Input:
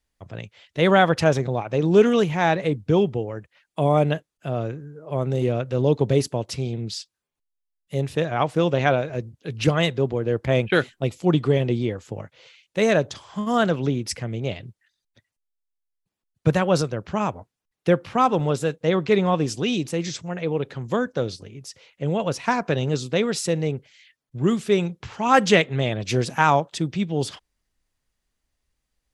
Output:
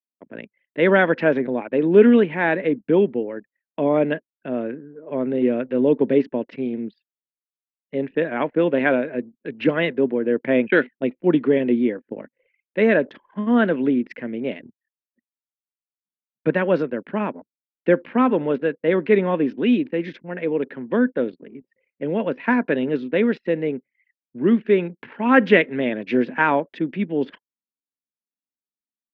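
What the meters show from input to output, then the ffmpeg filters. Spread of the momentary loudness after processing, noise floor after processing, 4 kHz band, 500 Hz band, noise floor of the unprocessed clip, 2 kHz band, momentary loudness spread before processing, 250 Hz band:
13 LU, below −85 dBFS, −7.5 dB, +2.5 dB, −83 dBFS, +3.5 dB, 13 LU, +4.5 dB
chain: -af "highpass=frequency=220:width=0.5412,highpass=frequency=220:width=1.3066,equalizer=frequency=250:width_type=q:width=4:gain=8,equalizer=frequency=760:width_type=q:width=4:gain=-9,equalizer=frequency=1200:width_type=q:width=4:gain=-9,equalizer=frequency=1700:width_type=q:width=4:gain=4,lowpass=frequency=2500:width=0.5412,lowpass=frequency=2500:width=1.3066,anlmdn=0.0398,volume=3dB"

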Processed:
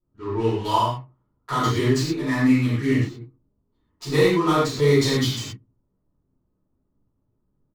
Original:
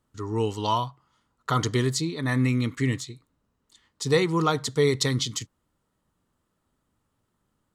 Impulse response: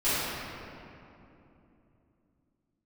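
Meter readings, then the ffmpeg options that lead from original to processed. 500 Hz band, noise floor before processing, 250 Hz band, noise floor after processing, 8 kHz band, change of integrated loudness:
+4.5 dB, −76 dBFS, +6.0 dB, −73 dBFS, −1.5 dB, +4.0 dB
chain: -filter_complex "[0:a]asplit=2[link_01][link_02];[link_02]adelay=77,lowpass=frequency=1200:poles=1,volume=-19.5dB,asplit=2[link_03][link_04];[link_04]adelay=77,lowpass=frequency=1200:poles=1,volume=0.34,asplit=2[link_05][link_06];[link_06]adelay=77,lowpass=frequency=1200:poles=1,volume=0.34[link_07];[link_01][link_03][link_05][link_07]amix=inputs=4:normalize=0,adynamicsmooth=sensitivity=7.5:basefreq=590[link_08];[1:a]atrim=start_sample=2205,afade=type=out:start_time=0.19:duration=0.01,atrim=end_sample=8820[link_09];[link_08][link_09]afir=irnorm=-1:irlink=0,volume=-7.5dB"

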